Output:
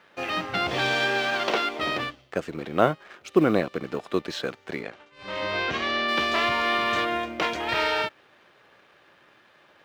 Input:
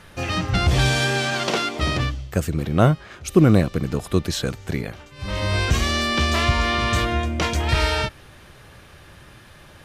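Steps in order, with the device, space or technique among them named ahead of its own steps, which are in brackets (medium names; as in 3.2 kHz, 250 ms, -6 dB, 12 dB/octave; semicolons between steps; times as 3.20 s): phone line with mismatched companding (band-pass 340–3500 Hz; companding laws mixed up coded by A); 4.82–6.07 s: low-pass 9.3 kHz -> 3.9 kHz 12 dB/octave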